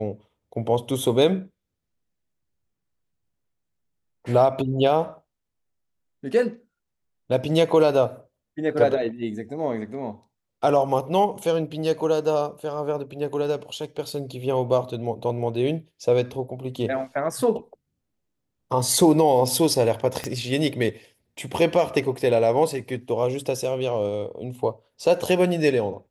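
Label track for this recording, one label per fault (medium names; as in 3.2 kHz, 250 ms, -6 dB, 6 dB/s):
20.240000	20.240000	pop -14 dBFS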